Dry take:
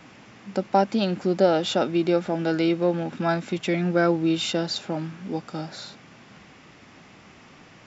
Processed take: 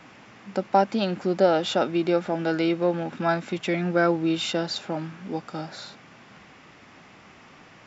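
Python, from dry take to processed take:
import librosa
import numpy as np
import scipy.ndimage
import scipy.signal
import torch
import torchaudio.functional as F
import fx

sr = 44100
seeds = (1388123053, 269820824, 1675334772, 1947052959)

y = fx.peak_eq(x, sr, hz=1200.0, db=4.5, octaves=2.8)
y = y * 10.0 ** (-3.0 / 20.0)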